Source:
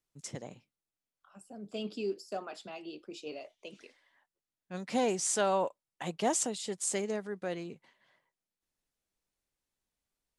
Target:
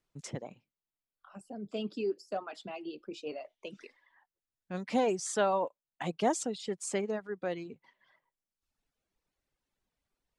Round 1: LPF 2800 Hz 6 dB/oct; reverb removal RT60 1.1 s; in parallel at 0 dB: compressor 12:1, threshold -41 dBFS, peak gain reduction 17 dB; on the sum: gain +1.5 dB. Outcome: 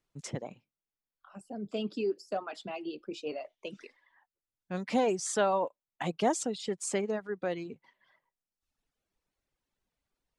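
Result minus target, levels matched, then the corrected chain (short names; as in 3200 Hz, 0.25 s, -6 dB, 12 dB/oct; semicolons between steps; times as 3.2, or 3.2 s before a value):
compressor: peak gain reduction -9 dB
LPF 2800 Hz 6 dB/oct; reverb removal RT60 1.1 s; in parallel at 0 dB: compressor 12:1, threshold -51 dBFS, peak gain reduction 26 dB; on the sum: gain +1.5 dB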